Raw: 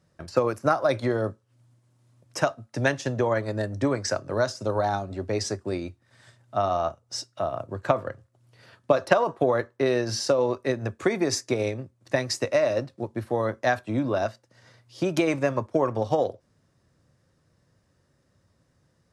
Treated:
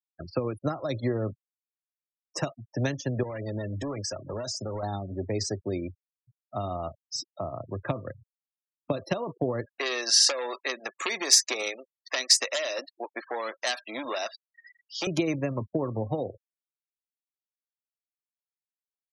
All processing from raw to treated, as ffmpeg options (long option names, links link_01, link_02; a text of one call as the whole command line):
ffmpeg -i in.wav -filter_complex "[0:a]asettb=1/sr,asplit=3[link_01][link_02][link_03];[link_01]atrim=end=3.234[link_04];[link_02]atrim=start=3.23:end=4.83,asetpts=PTS-STARTPTS,afade=type=in:duration=0.004:curve=qsin,afade=type=out:start_time=1.596:duration=0.004:curve=qsin,highshelf=frequency=4100:gain=12,acompressor=threshold=-25dB:ratio=8:attack=3.2:release=140:knee=1:detection=peak,asoftclip=type=hard:threshold=-28.5dB[link_05];[link_03]atrim=start=4.826[link_06];[link_04][link_05]acrossfade=duration=0.004:curve1=hsin:curve2=qsin[link_07];[link_07][link_06]acrossfade=duration=0.004:curve1=qsin:curve2=hsin,asettb=1/sr,asplit=3[link_08][link_09][link_10];[link_08]atrim=end=9.664[link_11];[link_09]atrim=start=9.66:end=15.07,asetpts=PTS-STARTPTS,afade=type=in:duration=0.004:curve=qsin,afade=type=out:start_time=5.406:duration=0.004:curve=qsin,aeval=exprs='0.398*sin(PI/2*2.51*val(0)/0.398)':channel_layout=same,highpass=1000[link_12];[link_10]atrim=start=15.066[link_13];[link_11][link_12]acrossfade=duration=0.004:curve1=hsin:curve2=qsin[link_14];[link_14][link_13]acrossfade=duration=0.004:curve1=qsin:curve2=hsin,bandreject=frequency=1500:width=12,afftfilt=real='re*gte(hypot(re,im),0.02)':imag='im*gte(hypot(re,im),0.02)':win_size=1024:overlap=0.75,acrossover=split=350|3000[link_15][link_16][link_17];[link_16]acompressor=threshold=-33dB:ratio=6[link_18];[link_15][link_18][link_17]amix=inputs=3:normalize=0" out.wav